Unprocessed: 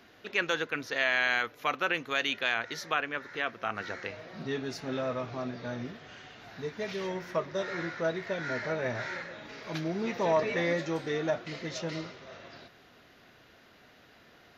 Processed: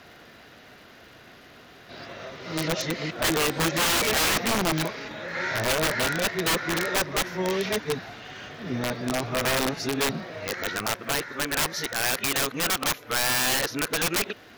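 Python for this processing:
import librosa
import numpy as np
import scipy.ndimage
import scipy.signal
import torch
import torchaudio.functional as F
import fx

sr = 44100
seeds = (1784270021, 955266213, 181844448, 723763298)

y = np.flip(x).copy()
y = (np.mod(10.0 ** (26.5 / 20.0) * y + 1.0, 2.0) - 1.0) / 10.0 ** (26.5 / 20.0)
y = fx.dmg_crackle(y, sr, seeds[0], per_s=350.0, level_db=-58.0)
y = F.gain(torch.from_numpy(y), 8.5).numpy()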